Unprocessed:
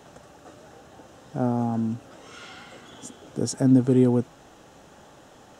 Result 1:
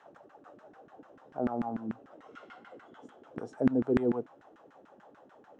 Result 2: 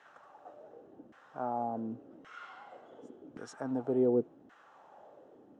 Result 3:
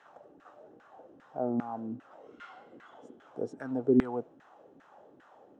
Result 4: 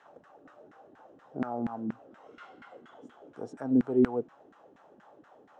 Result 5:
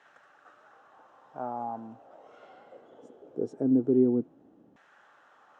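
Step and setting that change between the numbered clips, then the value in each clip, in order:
LFO band-pass, rate: 6.8 Hz, 0.89 Hz, 2.5 Hz, 4.2 Hz, 0.21 Hz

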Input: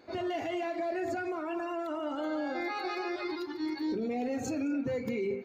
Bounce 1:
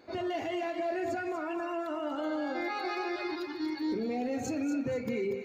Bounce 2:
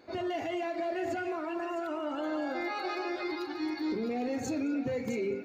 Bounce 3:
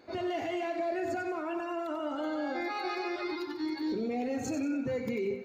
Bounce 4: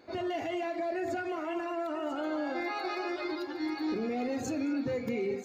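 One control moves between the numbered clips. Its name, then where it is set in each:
thinning echo, time: 239 ms, 658 ms, 93 ms, 992 ms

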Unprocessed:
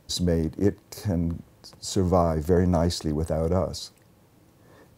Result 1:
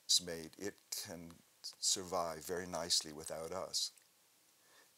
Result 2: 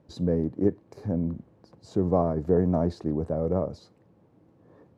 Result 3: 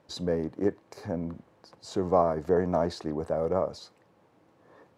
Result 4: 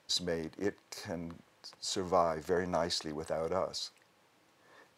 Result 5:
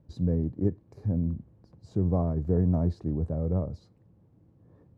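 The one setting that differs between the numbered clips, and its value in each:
band-pass filter, frequency: 7.1 kHz, 300 Hz, 820 Hz, 2.3 kHz, 100 Hz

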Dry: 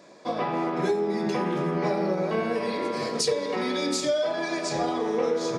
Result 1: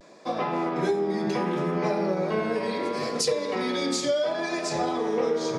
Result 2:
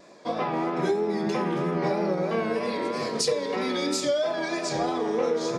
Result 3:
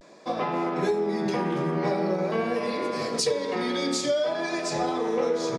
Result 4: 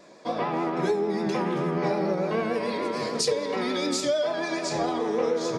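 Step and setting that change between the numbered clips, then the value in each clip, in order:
vibrato, rate: 0.69 Hz, 3.1 Hz, 0.46 Hz, 6.8 Hz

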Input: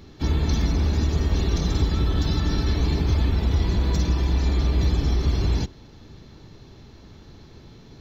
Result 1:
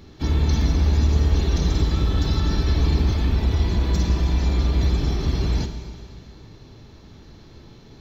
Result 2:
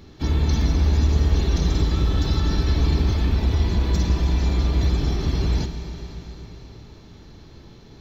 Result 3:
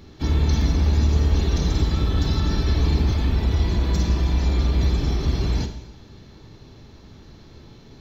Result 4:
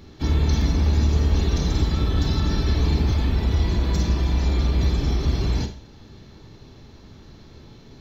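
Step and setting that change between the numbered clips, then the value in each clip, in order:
Schroeder reverb, RT60: 2 s, 4.4 s, 0.89 s, 0.43 s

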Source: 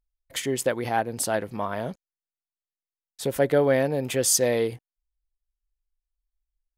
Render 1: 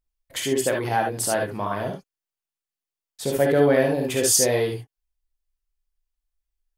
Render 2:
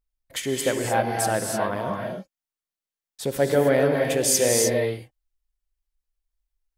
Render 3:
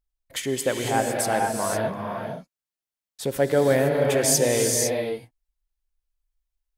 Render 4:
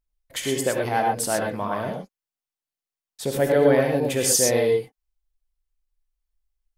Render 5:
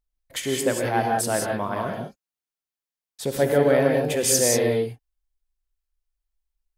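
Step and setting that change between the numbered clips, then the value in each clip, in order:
gated-style reverb, gate: 90 ms, 330 ms, 530 ms, 140 ms, 210 ms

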